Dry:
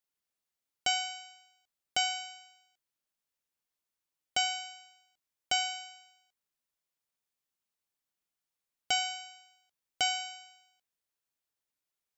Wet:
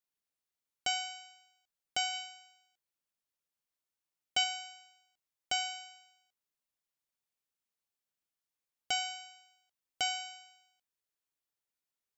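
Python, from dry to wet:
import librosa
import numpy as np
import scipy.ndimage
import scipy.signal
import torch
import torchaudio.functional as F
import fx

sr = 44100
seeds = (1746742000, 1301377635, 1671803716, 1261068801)

y = fx.dynamic_eq(x, sr, hz=3100.0, q=1.2, threshold_db=-43.0, ratio=4.0, max_db=5, at=(2.12, 4.44))
y = F.gain(torch.from_numpy(y), -3.5).numpy()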